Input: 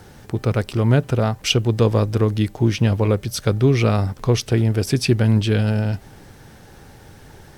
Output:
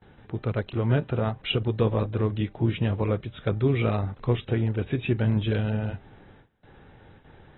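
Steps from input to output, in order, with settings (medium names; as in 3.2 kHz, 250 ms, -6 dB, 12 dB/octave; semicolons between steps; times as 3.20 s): low-pass 4.1 kHz 12 dB/octave; gate with hold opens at -35 dBFS; trim -8 dB; AAC 16 kbps 24 kHz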